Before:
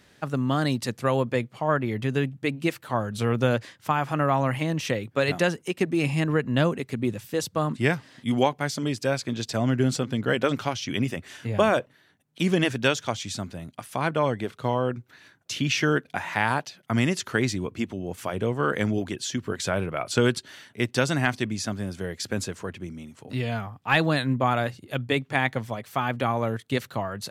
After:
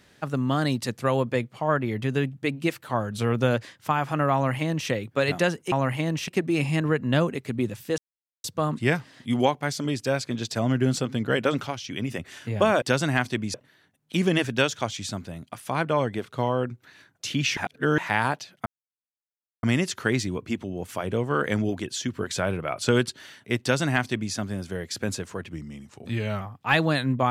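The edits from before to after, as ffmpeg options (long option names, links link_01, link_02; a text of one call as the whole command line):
ffmpeg -i in.wav -filter_complex "[0:a]asplit=13[link_01][link_02][link_03][link_04][link_05][link_06][link_07][link_08][link_09][link_10][link_11][link_12][link_13];[link_01]atrim=end=5.722[link_14];[link_02]atrim=start=4.338:end=4.902[link_15];[link_03]atrim=start=5.718:end=7.42,asetpts=PTS-STARTPTS,afade=type=out:start_time=1.698:duration=0.004:curve=hsin,apad=pad_dur=0.46[link_16];[link_04]atrim=start=7.42:end=10.652,asetpts=PTS-STARTPTS,afade=type=in:duration=0.004:curve=hsin[link_17];[link_05]atrim=start=10.648:end=11.092,asetpts=PTS-STARTPTS,volume=-4dB[link_18];[link_06]atrim=start=11.088:end=11.802[link_19];[link_07]atrim=start=20.898:end=21.622[link_20];[link_08]atrim=start=11.798:end=15.832[link_21];[link_09]atrim=start=15.828:end=16.242,asetpts=PTS-STARTPTS,areverse[link_22];[link_10]atrim=start=16.238:end=16.92,asetpts=PTS-STARTPTS,afade=type=out:start_time=0.678:duration=0.004:curve=hsin,apad=pad_dur=0.97[link_23];[link_11]atrim=start=16.92:end=22.814,asetpts=PTS-STARTPTS,afade=type=in:duration=0.004:curve=hsin[link_24];[link_12]atrim=start=22.81:end=23.62,asetpts=PTS-STARTPTS,asetrate=40131,aresample=44100[link_25];[link_13]atrim=start=23.616[link_26];[link_14][link_15]acrossfade=duration=0.004:curve1=hsin:curve2=hsin[link_27];[link_16][link_17]concat=n=2:v=0:a=1[link_28];[link_27][link_28]acrossfade=duration=0.004:curve1=hsin:curve2=hsin[link_29];[link_29][link_18]acrossfade=duration=0.004:curve1=hsin:curve2=hsin[link_30];[link_30][link_19]acrossfade=duration=0.004:curve1=hsin:curve2=hsin[link_31];[link_31][link_20]acrossfade=duration=0.004:curve1=hsin:curve2=hsin[link_32];[link_32][link_21]acrossfade=duration=0.004:curve1=hsin:curve2=hsin[link_33];[link_33][link_22]acrossfade=duration=0.004:curve1=hsin:curve2=hsin[link_34];[link_23][link_24]concat=n=2:v=0:a=1[link_35];[link_34][link_35]acrossfade=duration=0.004:curve1=hsin:curve2=hsin[link_36];[link_36][link_25]acrossfade=duration=0.004:curve1=hsin:curve2=hsin[link_37];[link_37][link_26]acrossfade=duration=0.004:curve1=hsin:curve2=hsin" out.wav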